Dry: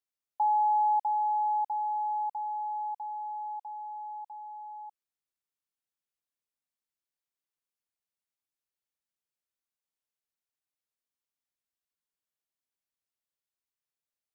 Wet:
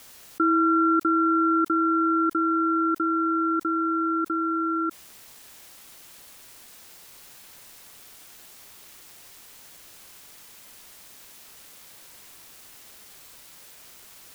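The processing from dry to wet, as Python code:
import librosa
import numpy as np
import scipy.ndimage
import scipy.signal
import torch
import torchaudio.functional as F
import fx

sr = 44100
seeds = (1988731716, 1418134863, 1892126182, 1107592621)

y = x * np.sin(2.0 * np.pi * 520.0 * np.arange(len(x)) / sr)
y = fx.env_flatten(y, sr, amount_pct=70)
y = F.gain(torch.from_numpy(y), 7.5).numpy()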